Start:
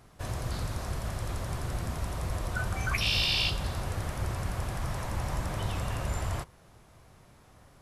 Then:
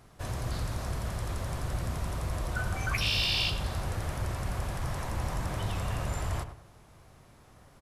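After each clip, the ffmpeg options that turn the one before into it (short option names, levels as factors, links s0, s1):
-filter_complex "[0:a]asplit=2[s0][s1];[s1]asoftclip=type=hard:threshold=0.0237,volume=0.266[s2];[s0][s2]amix=inputs=2:normalize=0,asplit=2[s3][s4];[s4]adelay=98,lowpass=f=1900:p=1,volume=0.335,asplit=2[s5][s6];[s6]adelay=98,lowpass=f=1900:p=1,volume=0.35,asplit=2[s7][s8];[s8]adelay=98,lowpass=f=1900:p=1,volume=0.35,asplit=2[s9][s10];[s10]adelay=98,lowpass=f=1900:p=1,volume=0.35[s11];[s3][s5][s7][s9][s11]amix=inputs=5:normalize=0,volume=0.794"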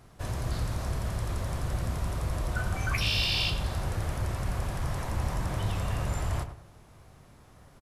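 -filter_complex "[0:a]lowshelf=f=330:g=2.5,asplit=2[s0][s1];[s1]adelay=29,volume=0.211[s2];[s0][s2]amix=inputs=2:normalize=0"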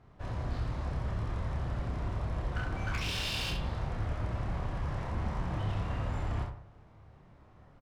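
-af "aeval=exprs='0.0562*(abs(mod(val(0)/0.0562+3,4)-2)-1)':c=same,adynamicsmooth=sensitivity=4.5:basefreq=2900,aecho=1:1:28|67:0.668|0.562,volume=0.562"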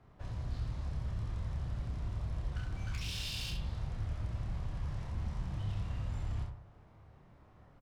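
-filter_complex "[0:a]acrossover=split=180|3000[s0][s1][s2];[s1]acompressor=threshold=0.002:ratio=2.5[s3];[s0][s3][s2]amix=inputs=3:normalize=0,volume=0.75"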